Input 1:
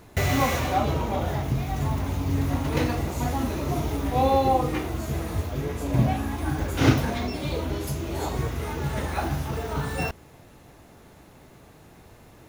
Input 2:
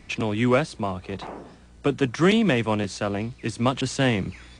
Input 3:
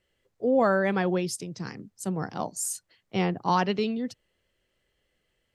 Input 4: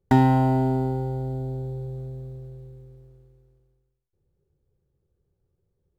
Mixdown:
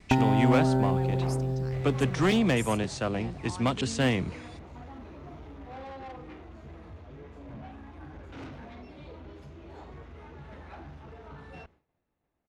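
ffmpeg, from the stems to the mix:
-filter_complex "[0:a]lowpass=3k,equalizer=f=120:t=o:w=0.28:g=-8,asoftclip=type=tanh:threshold=-24.5dB,adelay=1550,volume=-14.5dB[a];[1:a]volume=16dB,asoftclip=hard,volume=-16dB,volume=-3.5dB[b];[2:a]alimiter=limit=-23dB:level=0:latency=1,volume=-9.5dB[c];[3:a]acompressor=threshold=-20dB:ratio=6,volume=0.5dB[d];[a][b][c][d]amix=inputs=4:normalize=0,agate=range=-33dB:threshold=-54dB:ratio=3:detection=peak"

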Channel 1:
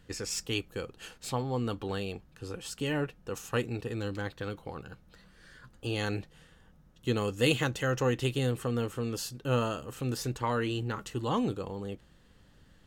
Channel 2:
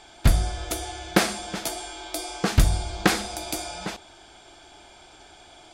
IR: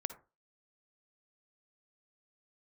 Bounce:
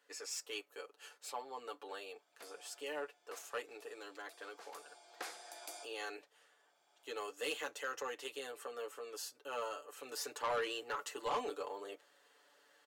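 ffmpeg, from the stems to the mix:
-filter_complex "[0:a]aecho=1:1:6.9:0.83,volume=-2dB,afade=t=in:st=9.93:d=0.49:silence=0.446684,asplit=2[a][b];[1:a]adelay=2150,volume=-14.5dB[c];[b]apad=whole_len=347615[d];[c][d]sidechaincompress=threshold=-52dB:ratio=10:attack=8.4:release=1230[e];[a][e]amix=inputs=2:normalize=0,highpass=f=460:w=0.5412,highpass=f=460:w=1.3066,equalizer=f=3.3k:t=o:w=0.81:g=-3,asoftclip=type=tanh:threshold=-30.5dB"

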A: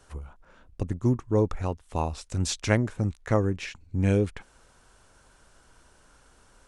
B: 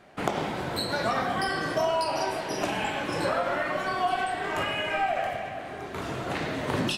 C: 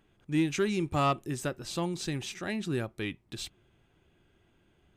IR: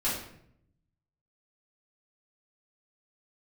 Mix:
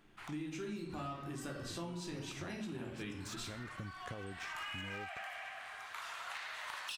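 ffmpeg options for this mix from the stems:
-filter_complex "[0:a]aeval=exprs='if(lt(val(0),0),0.447*val(0),val(0))':c=same,acompressor=threshold=-29dB:ratio=6,adelay=800,volume=-5.5dB[a];[1:a]highpass=f=1k:w=0.5412,highpass=f=1k:w=1.3066,volume=26.5dB,asoftclip=hard,volume=-26.5dB,volume=-4dB,afade=t=in:st=4.24:d=0.42:silence=0.298538[b];[2:a]volume=-3dB,asplit=2[c][d];[d]volume=-8dB[e];[a][c]amix=inputs=2:normalize=0,highpass=88,alimiter=level_in=5.5dB:limit=-24dB:level=0:latency=1,volume=-5.5dB,volume=0dB[f];[3:a]atrim=start_sample=2205[g];[e][g]afir=irnorm=-1:irlink=0[h];[b][f][h]amix=inputs=3:normalize=0,acompressor=threshold=-41dB:ratio=6"

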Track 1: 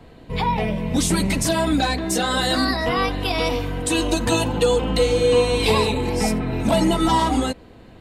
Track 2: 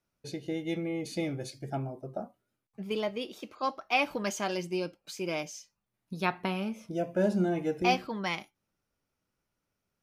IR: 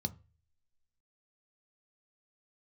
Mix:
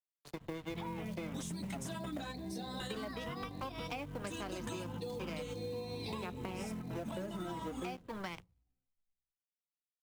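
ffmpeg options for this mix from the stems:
-filter_complex "[0:a]adelay=400,volume=-12.5dB,asplit=2[a][b];[b]volume=-10dB[c];[1:a]aeval=exprs='sgn(val(0))*max(abs(val(0))-0.0119,0)':c=same,equalizer=f=1.3k:w=0.53:g=2.5,volume=0dB,asplit=3[d][e][f];[e]volume=-23dB[g];[f]apad=whole_len=370854[h];[a][h]sidechaingate=range=-33dB:threshold=-50dB:ratio=16:detection=peak[i];[2:a]atrim=start_sample=2205[j];[c][g]amix=inputs=2:normalize=0[k];[k][j]afir=irnorm=-1:irlink=0[l];[i][d][l]amix=inputs=3:normalize=0,acrossover=split=160|530[m][n][o];[m]acompressor=threshold=-48dB:ratio=4[p];[n]acompressor=threshold=-33dB:ratio=4[q];[o]acompressor=threshold=-38dB:ratio=4[r];[p][q][r]amix=inputs=3:normalize=0,acrusher=bits=6:mode=log:mix=0:aa=0.000001,acompressor=threshold=-38dB:ratio=6"

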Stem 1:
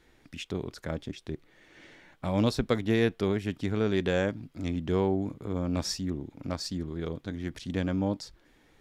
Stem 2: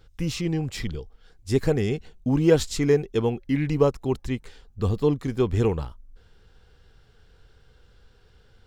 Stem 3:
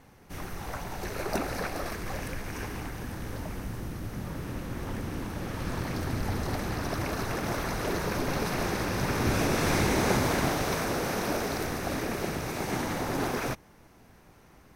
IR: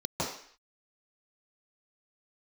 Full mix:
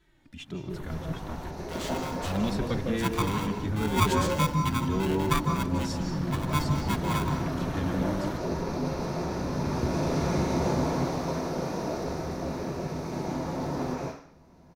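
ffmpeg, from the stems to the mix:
-filter_complex "[0:a]asplit=2[a][b];[b]adelay=2.6,afreqshift=-2[c];[a][c]amix=inputs=2:normalize=1,volume=-1.5dB,asplit=3[d][e][f];[e]volume=-13dB[g];[1:a]highpass=430,aeval=exprs='val(0)*sgn(sin(2*PI*590*n/s))':c=same,adelay=1500,volume=-4.5dB,asplit=2[h][i];[i]volume=-13.5dB[j];[2:a]acompressor=mode=upward:threshold=-48dB:ratio=2.5,adelay=400,volume=-8.5dB,asplit=2[k][l];[l]volume=-5dB[m];[f]apad=whole_len=668125[n];[k][n]sidechaingate=range=-33dB:threshold=-57dB:ratio=16:detection=peak[o];[3:a]atrim=start_sample=2205[p];[g][j][m]amix=inputs=3:normalize=0[q];[q][p]afir=irnorm=-1:irlink=0[r];[d][h][o][r]amix=inputs=4:normalize=0"

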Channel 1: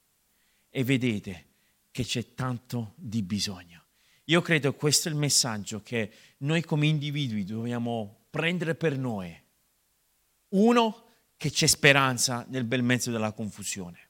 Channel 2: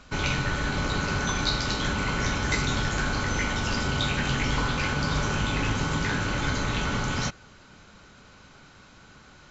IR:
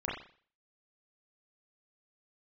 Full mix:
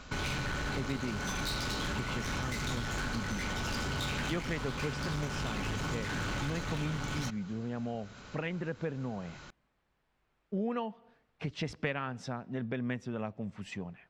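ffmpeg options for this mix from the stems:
-filter_complex "[0:a]lowpass=2k,volume=0dB[a];[1:a]volume=27dB,asoftclip=hard,volume=-27dB,volume=1.5dB[b];[a][b]amix=inputs=2:normalize=0,acompressor=threshold=-35dB:ratio=3"

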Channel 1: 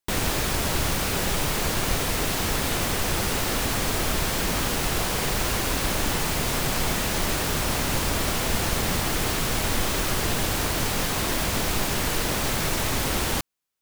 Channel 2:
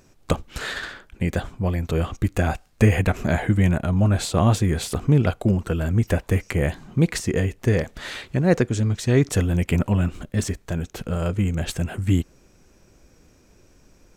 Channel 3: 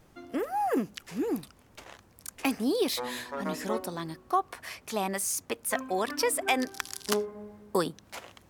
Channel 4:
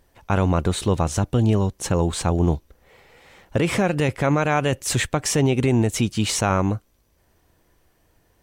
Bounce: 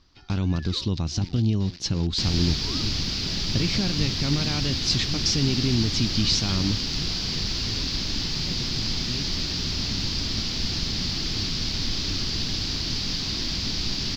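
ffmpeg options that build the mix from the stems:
-filter_complex "[0:a]adelay=2100,volume=-2.5dB[a];[1:a]bandreject=f=86.87:t=h:w=4,bandreject=f=173.74:t=h:w=4,bandreject=f=260.61:t=h:w=4,bandreject=f=347.48:t=h:w=4,bandreject=f=434.35:t=h:w=4,bandreject=f=521.22:t=h:w=4,bandreject=f=608.09:t=h:w=4,bandreject=f=694.96:t=h:w=4,bandreject=f=781.83:t=h:w=4,bandreject=f=868.7:t=h:w=4,bandreject=f=955.57:t=h:w=4,bandreject=f=1.04244k:t=h:w=4,bandreject=f=1.12931k:t=h:w=4,bandreject=f=1.21618k:t=h:w=4,bandreject=f=1.30305k:t=h:w=4,bandreject=f=1.38992k:t=h:w=4,bandreject=f=1.47679k:t=h:w=4,bandreject=f=1.56366k:t=h:w=4,bandreject=f=1.65053k:t=h:w=4,bandreject=f=1.7374k:t=h:w=4,bandreject=f=1.82427k:t=h:w=4,bandreject=f=1.91114k:t=h:w=4,bandreject=f=1.99801k:t=h:w=4,bandreject=f=2.08488k:t=h:w=4,bandreject=f=2.17175k:t=h:w=4,bandreject=f=2.25862k:t=h:w=4,bandreject=f=2.34549k:t=h:w=4,bandreject=f=2.43236k:t=h:w=4,bandreject=f=2.51923k:t=h:w=4,bandreject=f=2.6061k:t=h:w=4,bandreject=f=2.69297k:t=h:w=4,bandreject=f=2.77984k:t=h:w=4,bandreject=f=2.86671k:t=h:w=4,bandreject=f=2.95358k:t=h:w=4,bandreject=f=3.04045k:t=h:w=4,acrusher=bits=3:mix=0:aa=0.000001,volume=-16dB,asplit=2[b][c];[2:a]aeval=exprs='val(0)*sin(2*PI*700*n/s+700*0.6/0.28*sin(2*PI*0.28*n/s))':c=same,volume=0dB[d];[3:a]alimiter=limit=-13.5dB:level=0:latency=1:release=417,volume=0.5dB[e];[c]apad=whole_len=374840[f];[d][f]sidechaincompress=threshold=-49dB:ratio=8:attack=33:release=194[g];[a][b][g][e]amix=inputs=4:normalize=0,firequalizer=gain_entry='entry(270,0);entry(510,-14);entry(1500,-10);entry(4800,12);entry(8700,-26)':delay=0.05:min_phase=1"

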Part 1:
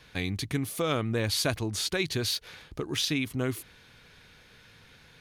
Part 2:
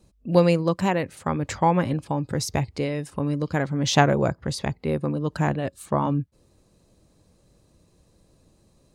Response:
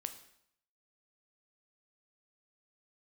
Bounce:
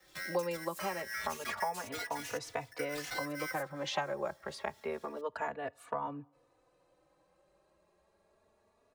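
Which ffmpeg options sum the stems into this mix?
-filter_complex "[0:a]acrossover=split=450[a][b];[a]aeval=exprs='val(0)*(1-0.7/2+0.7/2*cos(2*PI*4.3*n/s))':c=same[c];[b]aeval=exprs='val(0)*(1-0.7/2-0.7/2*cos(2*PI*4.3*n/s))':c=same[d];[c][d]amix=inputs=2:normalize=0,asoftclip=type=tanh:threshold=-23dB,aeval=exprs='val(0)*sgn(sin(2*PI*1800*n/s))':c=same,volume=-2.5dB[e];[1:a]acrossover=split=480 2300:gain=0.0794 1 0.141[f][g][h];[f][g][h]amix=inputs=3:normalize=0,volume=2.5dB,asplit=2[i][j];[j]volume=-17.5dB[k];[2:a]atrim=start_sample=2205[l];[k][l]afir=irnorm=-1:irlink=0[m];[e][i][m]amix=inputs=3:normalize=0,acrossover=split=110|250|4700[n][o][p][q];[n]acompressor=threshold=-60dB:ratio=4[r];[o]acompressor=threshold=-49dB:ratio=4[s];[p]acompressor=threshold=-31dB:ratio=4[t];[q]acompressor=threshold=-43dB:ratio=4[u];[r][s][t][u]amix=inputs=4:normalize=0,asplit=2[v][w];[w]adelay=3.4,afreqshift=0.28[x];[v][x]amix=inputs=2:normalize=1"

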